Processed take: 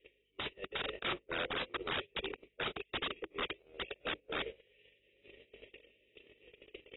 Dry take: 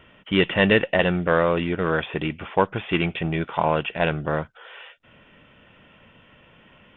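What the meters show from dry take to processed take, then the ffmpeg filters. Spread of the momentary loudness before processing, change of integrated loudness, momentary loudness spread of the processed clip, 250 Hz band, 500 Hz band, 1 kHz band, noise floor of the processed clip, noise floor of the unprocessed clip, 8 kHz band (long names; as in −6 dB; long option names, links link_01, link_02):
10 LU, −17.0 dB, 19 LU, −24.0 dB, −20.5 dB, −17.5 dB, −75 dBFS, −54 dBFS, can't be measured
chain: -filter_complex "[0:a]aeval=exprs='val(0)+0.5*0.1*sgn(val(0))':channel_layout=same,acontrast=33,asuperstop=centerf=1100:order=12:qfactor=0.76,highpass=frequency=400:width=0.5412,highpass=frequency=400:width=1.3066,equalizer=frequency=410:width_type=q:width=4:gain=10,equalizer=frequency=600:width_type=q:width=4:gain=-6,equalizer=frequency=850:width_type=q:width=4:gain=-9,equalizer=frequency=1300:width_type=q:width=4:gain=3,equalizer=frequency=2100:width_type=q:width=4:gain=-6,lowpass=frequency=2400:width=0.5412,lowpass=frequency=2400:width=1.3066,asplit=2[link_01][link_02];[link_02]aecho=0:1:166:0.299[link_03];[link_01][link_03]amix=inputs=2:normalize=0,flanger=delay=2.4:depth=3.1:regen=-53:speed=0.3:shape=sinusoidal,areverse,acompressor=threshold=-29dB:ratio=6,areverse,aeval=exprs='val(0)+0.00501*(sin(2*PI*50*n/s)+sin(2*PI*2*50*n/s)/2+sin(2*PI*3*50*n/s)/3+sin(2*PI*4*50*n/s)/4+sin(2*PI*5*50*n/s)/5)':channel_layout=same,agate=range=-51dB:threshold=-27dB:ratio=16:detection=peak,aeval=exprs='(mod(158*val(0)+1,2)-1)/158':channel_layout=same,aemphasis=mode=production:type=75fm,volume=12dB" -ar 22050 -c:a aac -b:a 16k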